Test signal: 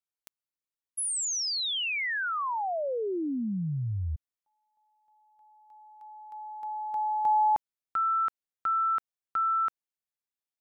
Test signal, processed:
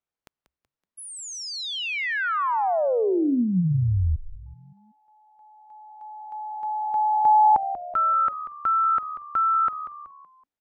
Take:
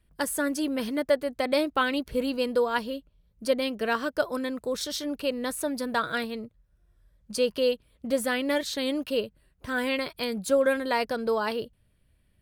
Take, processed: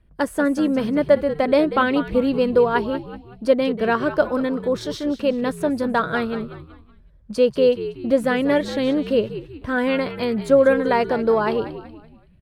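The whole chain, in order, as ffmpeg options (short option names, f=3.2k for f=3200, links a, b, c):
-filter_complex "[0:a]lowpass=f=1.2k:p=1,asplit=2[a][b];[b]asplit=4[c][d][e][f];[c]adelay=188,afreqshift=-73,volume=-12.5dB[g];[d]adelay=376,afreqshift=-146,volume=-20dB[h];[e]adelay=564,afreqshift=-219,volume=-27.6dB[i];[f]adelay=752,afreqshift=-292,volume=-35.1dB[j];[g][h][i][j]amix=inputs=4:normalize=0[k];[a][k]amix=inputs=2:normalize=0,volume=9dB"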